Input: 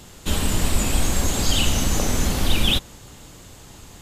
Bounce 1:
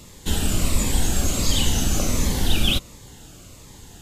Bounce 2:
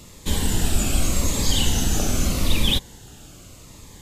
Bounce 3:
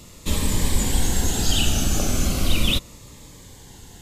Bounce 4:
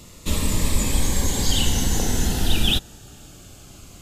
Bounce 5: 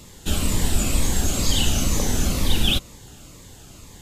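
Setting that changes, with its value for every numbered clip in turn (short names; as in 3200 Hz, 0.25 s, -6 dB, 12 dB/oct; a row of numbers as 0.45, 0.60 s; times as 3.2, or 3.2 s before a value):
cascading phaser, rate: 1.4, 0.82, 0.36, 0.21, 2.1 Hz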